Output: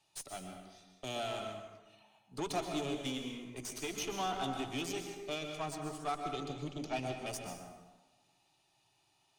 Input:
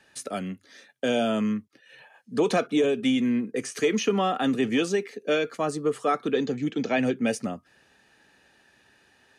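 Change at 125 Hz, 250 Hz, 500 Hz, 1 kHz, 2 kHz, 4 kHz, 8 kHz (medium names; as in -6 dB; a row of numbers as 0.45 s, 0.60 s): -9.5 dB, -16.5 dB, -15.5 dB, -8.5 dB, -13.0 dB, -7.5 dB, -6.0 dB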